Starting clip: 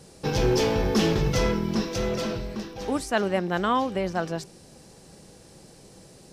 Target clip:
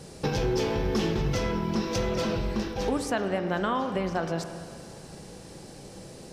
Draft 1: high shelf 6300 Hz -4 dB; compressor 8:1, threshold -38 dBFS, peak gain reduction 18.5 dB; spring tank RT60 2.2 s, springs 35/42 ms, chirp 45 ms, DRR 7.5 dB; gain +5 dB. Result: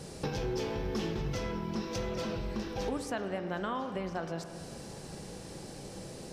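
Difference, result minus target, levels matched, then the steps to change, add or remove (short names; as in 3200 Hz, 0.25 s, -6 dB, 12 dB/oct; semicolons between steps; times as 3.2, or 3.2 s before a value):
compressor: peak gain reduction +7.5 dB
change: compressor 8:1, threshold -29.5 dBFS, peak gain reduction 11 dB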